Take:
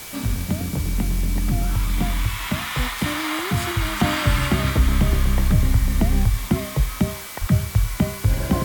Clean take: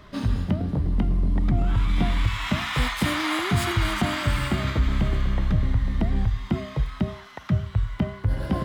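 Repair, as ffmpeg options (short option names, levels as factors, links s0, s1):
-filter_complex "[0:a]bandreject=f=2300:w=30,asplit=3[s0][s1][s2];[s0]afade=t=out:st=5.09:d=0.02[s3];[s1]highpass=f=140:w=0.5412,highpass=f=140:w=1.3066,afade=t=in:st=5.09:d=0.02,afade=t=out:st=5.21:d=0.02[s4];[s2]afade=t=in:st=5.21:d=0.02[s5];[s3][s4][s5]amix=inputs=3:normalize=0,asplit=3[s6][s7][s8];[s6]afade=t=out:st=7.4:d=0.02[s9];[s7]highpass=f=140:w=0.5412,highpass=f=140:w=1.3066,afade=t=in:st=7.4:d=0.02,afade=t=out:st=7.52:d=0.02[s10];[s8]afade=t=in:st=7.52:d=0.02[s11];[s9][s10][s11]amix=inputs=3:normalize=0,afwtdn=0.016,asetnsamples=n=441:p=0,asendcmd='4 volume volume -4.5dB',volume=1"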